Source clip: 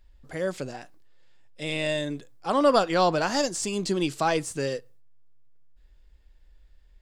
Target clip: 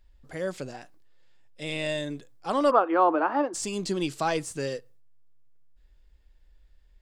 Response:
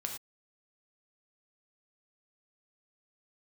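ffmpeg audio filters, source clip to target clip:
-filter_complex "[0:a]asplit=3[link_01][link_02][link_03];[link_01]afade=type=out:start_time=2.7:duration=0.02[link_04];[link_02]highpass=frequency=300:width=0.5412,highpass=frequency=300:width=1.3066,equalizer=frequency=310:width_type=q:width=4:gain=10,equalizer=frequency=870:width_type=q:width=4:gain=6,equalizer=frequency=1200:width_type=q:width=4:gain=8,equalizer=frequency=2000:width_type=q:width=4:gain=-5,lowpass=frequency=2200:width=0.5412,lowpass=frequency=2200:width=1.3066,afade=type=in:start_time=2.7:duration=0.02,afade=type=out:start_time=3.53:duration=0.02[link_05];[link_03]afade=type=in:start_time=3.53:duration=0.02[link_06];[link_04][link_05][link_06]amix=inputs=3:normalize=0,volume=-2.5dB"

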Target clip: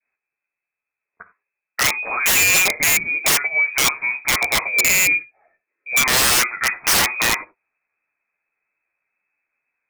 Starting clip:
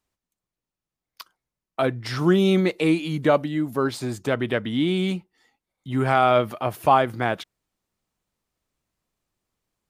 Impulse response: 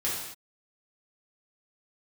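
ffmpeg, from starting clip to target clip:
-filter_complex "[0:a]adynamicequalizer=threshold=0.0141:dfrequency=1600:dqfactor=1.5:tfrequency=1600:tqfactor=1.5:attack=5:release=100:ratio=0.375:range=3:mode=boostabove:tftype=bell,flanger=delay=9.5:depth=3.1:regen=-15:speed=0.55:shape=triangular,lowpass=frequency=2200:width_type=q:width=0.5098,lowpass=frequency=2200:width_type=q:width=0.6013,lowpass=frequency=2200:width_type=q:width=0.9,lowpass=frequency=2200:width_type=q:width=2.563,afreqshift=-2600,asplit=2[link_01][link_02];[1:a]atrim=start_sample=2205,afade=type=out:start_time=0.15:duration=0.01,atrim=end_sample=7056[link_03];[link_02][link_03]afir=irnorm=-1:irlink=0,volume=-15dB[link_04];[link_01][link_04]amix=inputs=2:normalize=0,aeval=exprs='(mod(7.08*val(0)+1,2)-1)/7.08':channel_layout=same,volume=6.5dB"

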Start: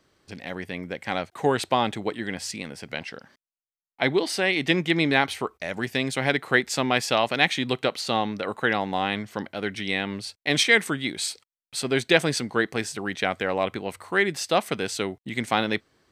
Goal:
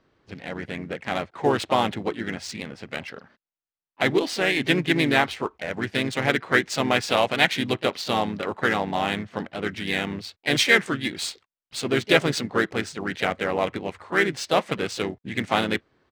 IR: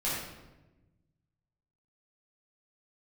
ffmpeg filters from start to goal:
-filter_complex "[0:a]acrusher=bits=7:mode=log:mix=0:aa=0.000001,asplit=3[link_01][link_02][link_03];[link_02]asetrate=37084,aresample=44100,atempo=1.18921,volume=-7dB[link_04];[link_03]asetrate=52444,aresample=44100,atempo=0.840896,volume=-13dB[link_05];[link_01][link_04][link_05]amix=inputs=3:normalize=0,adynamicsmooth=sensitivity=5:basefreq=3400"

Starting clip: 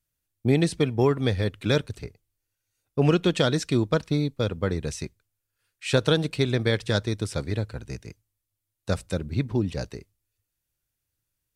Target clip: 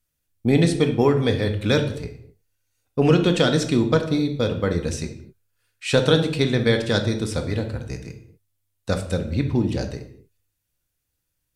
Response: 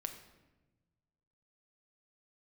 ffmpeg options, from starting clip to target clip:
-filter_complex "[1:a]atrim=start_sample=2205,afade=type=out:start_time=0.44:duration=0.01,atrim=end_sample=19845,asetrate=66150,aresample=44100[link_01];[0:a][link_01]afir=irnorm=-1:irlink=0,volume=9dB"

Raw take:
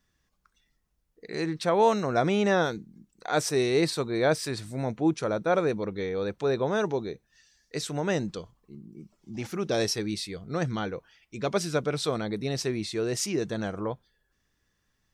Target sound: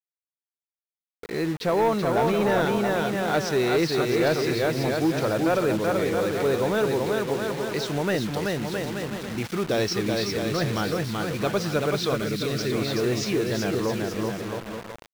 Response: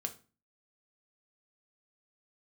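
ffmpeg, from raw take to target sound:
-filter_complex "[0:a]lowpass=frequency=5900:width=0.5412,lowpass=frequency=5900:width=1.3066,aecho=1:1:380|665|878.8|1039|1159:0.631|0.398|0.251|0.158|0.1,asoftclip=type=tanh:threshold=-17dB,asplit=2[link_01][link_02];[link_02]acompressor=threshold=-32dB:ratio=6,volume=0.5dB[link_03];[link_01][link_03]amix=inputs=2:normalize=0,acrusher=bits=5:mix=0:aa=0.000001,highshelf=frequency=3400:gain=-8.5,acrossover=split=1400[link_04][link_05];[link_05]dynaudnorm=framelen=640:gausssize=9:maxgain=4.5dB[link_06];[link_04][link_06]amix=inputs=2:normalize=0,asettb=1/sr,asplit=3[link_07][link_08][link_09];[link_07]atrim=end=12.154[link_10];[link_08]atrim=start=12.15:end=12.72,asetpts=PTS-STARTPTS,afade=type=in:duration=0.004:curve=qsin,afade=type=out:start_time=0.566:duration=0.004:curve=qsin,equalizer=frequency=840:width_type=o:width=1.1:gain=-11[link_11];[link_09]atrim=start=12.716[link_12];[link_10][link_11]acrossfade=duration=0.004:curve1=hsin:curve2=qsin[link_13];[link_13][link_12]acrossfade=duration=0.004:curve1=qsin:curve2=hsin"

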